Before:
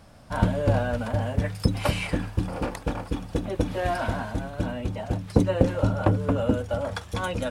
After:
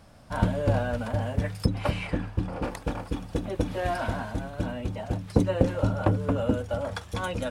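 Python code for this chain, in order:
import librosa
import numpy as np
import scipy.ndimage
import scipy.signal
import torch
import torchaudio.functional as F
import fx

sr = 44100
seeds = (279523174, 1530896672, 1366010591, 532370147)

y = fx.high_shelf(x, sr, hz=fx.line((1.65, 3900.0), (2.63, 6000.0)), db=-12.0, at=(1.65, 2.63), fade=0.02)
y = F.gain(torch.from_numpy(y), -2.0).numpy()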